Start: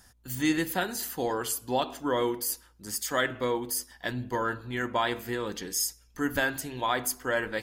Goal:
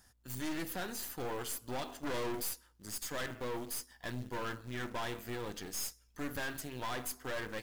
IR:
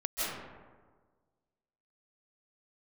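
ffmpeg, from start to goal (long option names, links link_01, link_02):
-filter_complex "[0:a]asettb=1/sr,asplit=3[link_01][link_02][link_03];[link_01]atrim=end=2.034[link_04];[link_02]atrim=start=2.03:end=2.49,asetpts=PTS-STARTPTS,afade=type=in:duration=0.004:curve=qsin,afade=type=out:start_time=0.456:duration=0.004:curve=qsin,acontrast=82[link_05];[link_03]atrim=start=2.486[link_06];[link_04][link_05]acrossfade=duration=0.004:curve1=hsin:curve2=qsin[link_07];[link_07][link_06]acrossfade=duration=0.004:curve1=qsin:curve2=hsin,acrusher=bits=4:mode=log:mix=0:aa=0.000001,aeval=exprs='(tanh(44.7*val(0)+0.8)-tanh(0.8))/44.7':channel_layout=same,volume=-2.5dB"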